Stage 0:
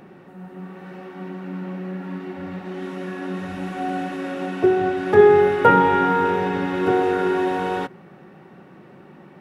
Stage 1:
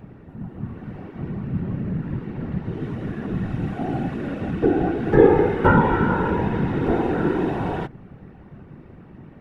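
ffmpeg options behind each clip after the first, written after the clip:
-af "afftfilt=real='hypot(re,im)*cos(2*PI*random(0))':imag='hypot(re,im)*sin(2*PI*random(1))':win_size=512:overlap=0.75,bass=f=250:g=13,treble=f=4k:g=-6,volume=1.5dB"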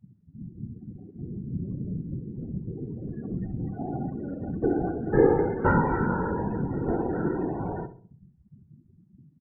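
-filter_complex "[0:a]afftdn=nr=35:nf=-29,asplit=2[a][b];[b]adelay=66,lowpass=f=1.1k:p=1,volume=-11dB,asplit=2[c][d];[d]adelay=66,lowpass=f=1.1k:p=1,volume=0.45,asplit=2[e][f];[f]adelay=66,lowpass=f=1.1k:p=1,volume=0.45,asplit=2[g][h];[h]adelay=66,lowpass=f=1.1k:p=1,volume=0.45,asplit=2[i][j];[j]adelay=66,lowpass=f=1.1k:p=1,volume=0.45[k];[c][e][g][i][k]amix=inputs=5:normalize=0[l];[a][l]amix=inputs=2:normalize=0,volume=-6.5dB"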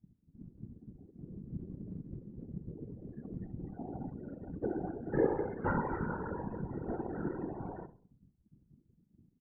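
-af "afftfilt=real='hypot(re,im)*cos(2*PI*random(0))':imag='hypot(re,im)*sin(2*PI*random(1))':win_size=512:overlap=0.75,volume=-6.5dB"

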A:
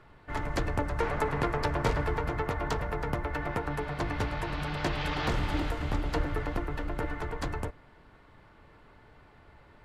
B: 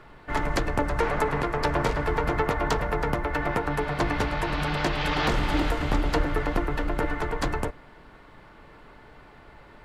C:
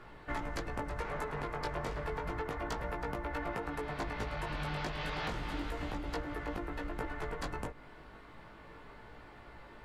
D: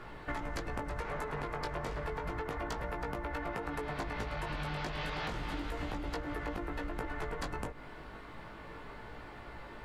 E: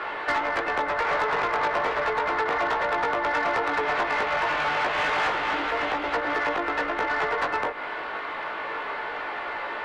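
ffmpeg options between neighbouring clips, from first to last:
-af "equalizer=f=90:w=1.6:g=-7.5,alimiter=limit=-19.5dB:level=0:latency=1:release=430,volume=7.5dB"
-af "acompressor=threshold=-32dB:ratio=5,flanger=delay=17:depth=2.2:speed=0.32"
-af "acompressor=threshold=-39dB:ratio=6,volume=5dB"
-filter_complex "[0:a]acrossover=split=2800[a][b];[b]acompressor=threshold=-54dB:ratio=4:attack=1:release=60[c];[a][c]amix=inputs=2:normalize=0,acrossover=split=340 3800:gain=0.178 1 0.141[d][e][f];[d][e][f]amix=inputs=3:normalize=0,asplit=2[g][h];[h]highpass=f=720:p=1,volume=18dB,asoftclip=type=tanh:threshold=-24dB[i];[g][i]amix=inputs=2:normalize=0,lowpass=f=6.2k:p=1,volume=-6dB,volume=8.5dB"

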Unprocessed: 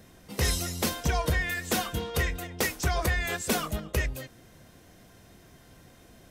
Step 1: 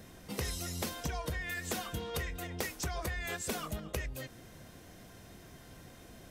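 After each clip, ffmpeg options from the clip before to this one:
-af "acompressor=threshold=-36dB:ratio=5,volume=1dB"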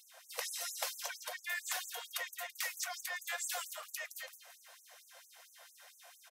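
-af "aecho=1:1:167|334|501|668:0.355|0.124|0.0435|0.0152,afftfilt=real='re*gte(b*sr/1024,470*pow(6200/470,0.5+0.5*sin(2*PI*4.4*pts/sr)))':imag='im*gte(b*sr/1024,470*pow(6200/470,0.5+0.5*sin(2*PI*4.4*pts/sr)))':win_size=1024:overlap=0.75,volume=1dB"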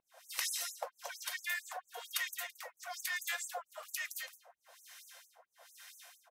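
-filter_complex "[0:a]acrossover=split=1100[a][b];[a]aeval=exprs='val(0)*(1-1/2+1/2*cos(2*PI*1.1*n/s))':c=same[c];[b]aeval=exprs='val(0)*(1-1/2-1/2*cos(2*PI*1.1*n/s))':c=same[d];[c][d]amix=inputs=2:normalize=0,volume=5dB"

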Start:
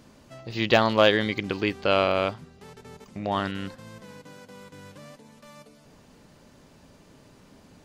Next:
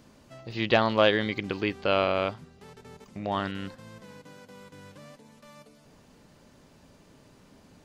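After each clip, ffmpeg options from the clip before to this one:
-filter_complex "[0:a]acrossover=split=5200[a][b];[b]acompressor=threshold=-55dB:ratio=4:attack=1:release=60[c];[a][c]amix=inputs=2:normalize=0,volume=-2.5dB"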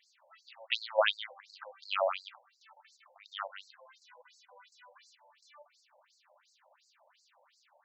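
-af "afftfilt=real='re*between(b*sr/1024,670*pow(5900/670,0.5+0.5*sin(2*PI*2.8*pts/sr))/1.41,670*pow(5900/670,0.5+0.5*sin(2*PI*2.8*pts/sr))*1.41)':imag='im*between(b*sr/1024,670*pow(5900/670,0.5+0.5*sin(2*PI*2.8*pts/sr))/1.41,670*pow(5900/670,0.5+0.5*sin(2*PI*2.8*pts/sr))*1.41)':win_size=1024:overlap=0.75"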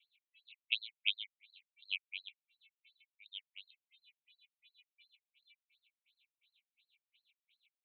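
-af "asuperpass=centerf=3000:order=20:qfactor=1.6,volume=-1.5dB"

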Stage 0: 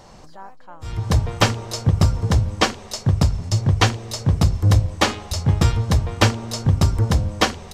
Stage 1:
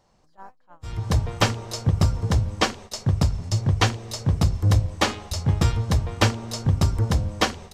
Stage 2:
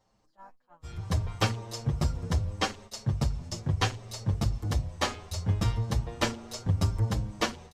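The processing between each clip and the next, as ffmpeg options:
-af "agate=range=-15dB:threshold=-36dB:ratio=16:detection=peak,volume=-3.5dB"
-filter_complex "[0:a]asplit=2[a][b];[b]adelay=7.2,afreqshift=0.72[c];[a][c]amix=inputs=2:normalize=1,volume=-4dB"

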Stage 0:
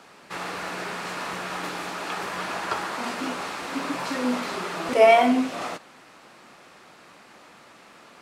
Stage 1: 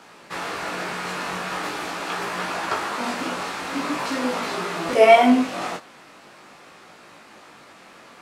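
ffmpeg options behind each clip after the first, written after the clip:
-af "flanger=delay=17.5:depth=4.1:speed=0.43,volume=6dB"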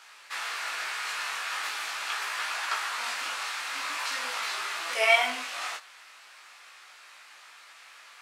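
-af "highpass=1.5k"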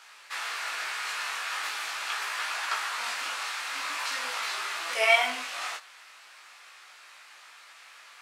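-af "equalizer=f=140:t=o:w=0.85:g=-6"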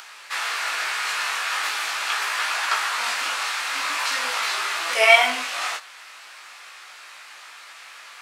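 -af "acompressor=mode=upward:threshold=-47dB:ratio=2.5,volume=7.5dB"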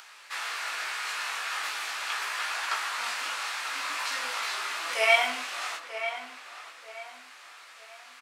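-filter_complex "[0:a]asplit=2[a][b];[b]adelay=937,lowpass=f=2.5k:p=1,volume=-9.5dB,asplit=2[c][d];[d]adelay=937,lowpass=f=2.5k:p=1,volume=0.37,asplit=2[e][f];[f]adelay=937,lowpass=f=2.5k:p=1,volume=0.37,asplit=2[g][h];[h]adelay=937,lowpass=f=2.5k:p=1,volume=0.37[i];[a][c][e][g][i]amix=inputs=5:normalize=0,volume=-7.5dB"

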